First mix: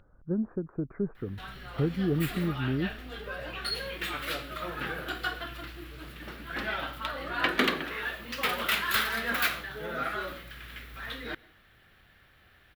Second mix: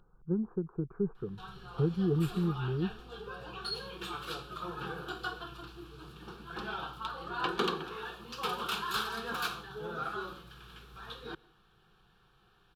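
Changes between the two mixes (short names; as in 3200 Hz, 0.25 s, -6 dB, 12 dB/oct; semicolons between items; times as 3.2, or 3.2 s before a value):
background: add air absorption 53 m; master: add fixed phaser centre 400 Hz, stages 8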